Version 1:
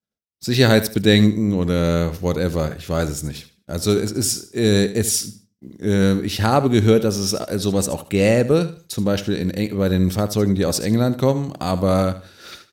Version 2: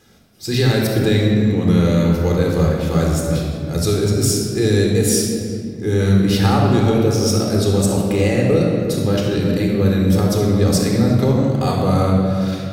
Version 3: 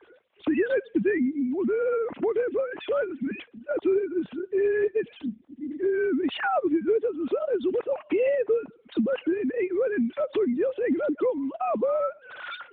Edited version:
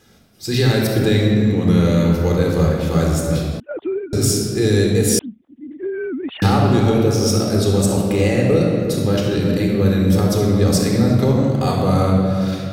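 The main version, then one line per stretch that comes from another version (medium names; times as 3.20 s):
2
3.60–4.13 s: from 3
5.19–6.42 s: from 3
not used: 1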